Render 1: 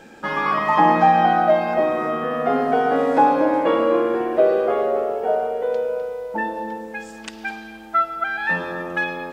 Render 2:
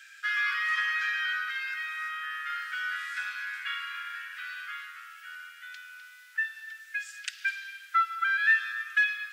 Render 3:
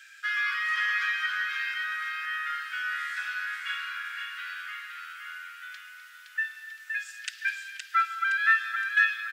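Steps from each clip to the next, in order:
steep high-pass 1.4 kHz 72 dB/octave
feedback delay 517 ms, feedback 39%, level -5 dB

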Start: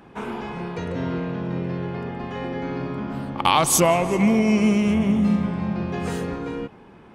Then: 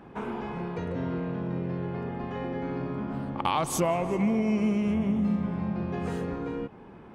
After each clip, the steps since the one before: treble shelf 2.5 kHz -9.5 dB; compression 1.5:1, threshold -35 dBFS, peak gain reduction 8 dB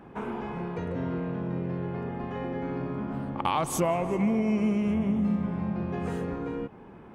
peaking EQ 4.5 kHz -4 dB 1 oct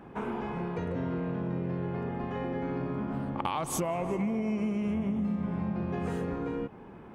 compression, threshold -27 dBFS, peak gain reduction 6.5 dB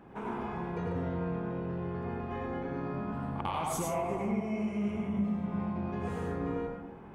plate-style reverb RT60 0.72 s, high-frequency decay 0.45×, pre-delay 75 ms, DRR -1.5 dB; trim -5 dB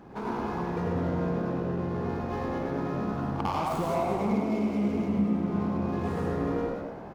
median filter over 15 samples; frequency-shifting echo 102 ms, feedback 62%, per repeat +64 Hz, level -9 dB; trim +4.5 dB

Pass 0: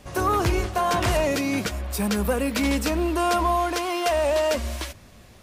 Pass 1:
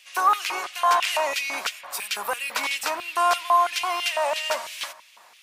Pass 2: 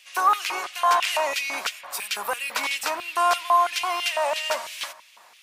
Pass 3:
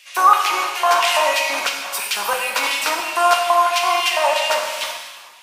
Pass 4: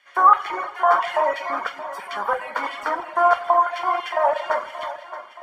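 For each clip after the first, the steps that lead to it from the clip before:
band-passed feedback delay 90 ms, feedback 74%, band-pass 980 Hz, level -19 dB; LFO high-pass square 3 Hz 940–2600 Hz
no audible change
gated-style reverb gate 470 ms falling, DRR 0.5 dB; trim +4.5 dB
reverb removal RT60 1.2 s; Savitzky-Golay filter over 41 samples; thinning echo 624 ms, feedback 54%, high-pass 210 Hz, level -13.5 dB

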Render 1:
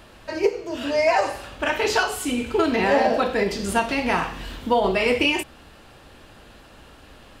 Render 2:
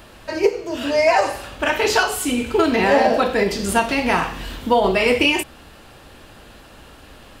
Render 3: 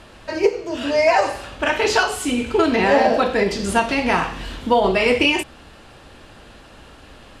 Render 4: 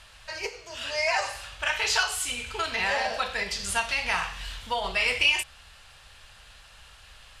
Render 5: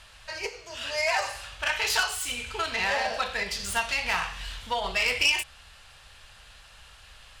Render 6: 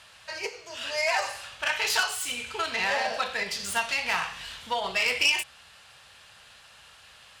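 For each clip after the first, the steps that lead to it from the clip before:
treble shelf 11 kHz +6.5 dB; trim +3.5 dB
Bessel low-pass 8.6 kHz, order 8
amplifier tone stack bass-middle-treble 10-0-10
self-modulated delay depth 0.075 ms
high-pass 130 Hz 12 dB/octave

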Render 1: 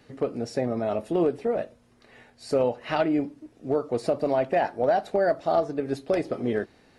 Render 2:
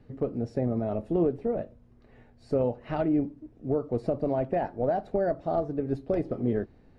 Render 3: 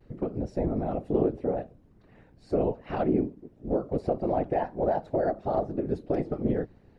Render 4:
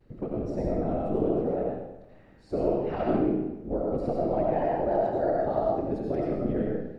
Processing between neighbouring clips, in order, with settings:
tilt EQ -4 dB/octave; trim -7.5 dB
whisper effect; vibrato 0.31 Hz 21 cents
algorithmic reverb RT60 1 s, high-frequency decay 0.9×, pre-delay 45 ms, DRR -3 dB; trim -3.5 dB

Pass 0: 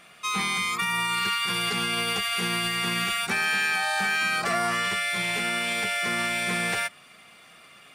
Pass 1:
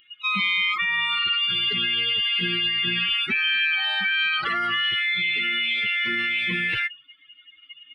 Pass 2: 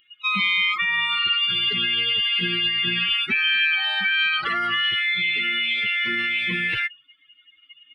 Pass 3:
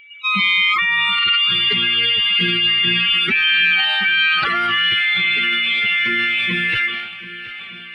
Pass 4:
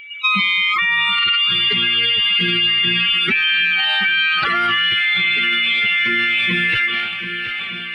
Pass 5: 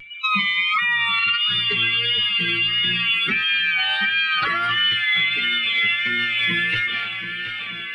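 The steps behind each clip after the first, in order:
expander on every frequency bin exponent 3; FFT filter 370 Hz 0 dB, 660 Hz -18 dB, 1.2 kHz -2 dB, 3.2 kHz +11 dB, 6.3 kHz -27 dB; level flattener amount 70%
upward expansion 1.5:1, over -34 dBFS; trim +2.5 dB
shuffle delay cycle 1213 ms, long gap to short 1.5:1, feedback 54%, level -17 dB; whistle 2.3 kHz -47 dBFS; transient shaper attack -2 dB, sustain +8 dB; trim +5 dB
compression, threshold -22 dBFS, peak gain reduction 9.5 dB; trim +7.5 dB
vibrato 1.5 Hz 38 cents; reverberation RT60 0.20 s, pre-delay 4 ms, DRR 7 dB; trim -4 dB

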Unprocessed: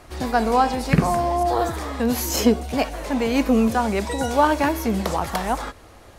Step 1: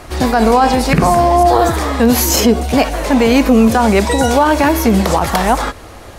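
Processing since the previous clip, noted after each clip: loudness maximiser +13 dB; trim -1 dB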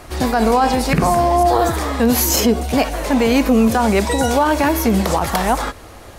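treble shelf 11 kHz +5 dB; trim -4 dB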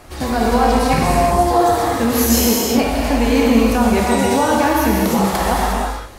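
gated-style reverb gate 390 ms flat, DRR -3.5 dB; trim -4.5 dB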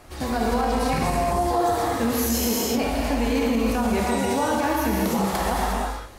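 peak limiter -7.5 dBFS, peak gain reduction 6 dB; trim -6 dB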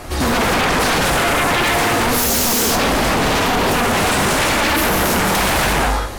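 sine folder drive 12 dB, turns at -13 dBFS

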